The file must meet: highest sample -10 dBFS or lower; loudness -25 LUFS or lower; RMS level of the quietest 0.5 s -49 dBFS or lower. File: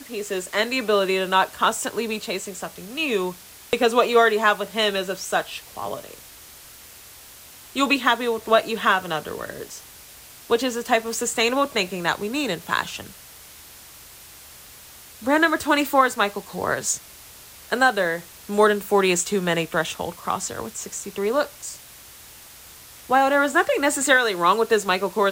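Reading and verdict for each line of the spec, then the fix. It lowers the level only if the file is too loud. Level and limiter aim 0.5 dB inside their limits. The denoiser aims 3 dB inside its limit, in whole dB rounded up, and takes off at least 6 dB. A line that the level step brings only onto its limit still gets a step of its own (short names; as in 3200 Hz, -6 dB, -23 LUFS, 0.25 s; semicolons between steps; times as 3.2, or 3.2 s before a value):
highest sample -5.0 dBFS: fail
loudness -22.0 LUFS: fail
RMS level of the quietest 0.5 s -45 dBFS: fail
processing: denoiser 6 dB, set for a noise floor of -45 dBFS; gain -3.5 dB; limiter -10.5 dBFS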